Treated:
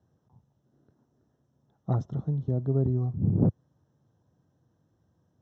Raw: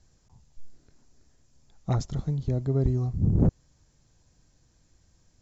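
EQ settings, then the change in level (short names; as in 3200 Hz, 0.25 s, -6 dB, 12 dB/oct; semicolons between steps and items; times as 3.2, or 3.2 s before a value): running mean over 19 samples; HPF 97 Hz 24 dB/oct; 0.0 dB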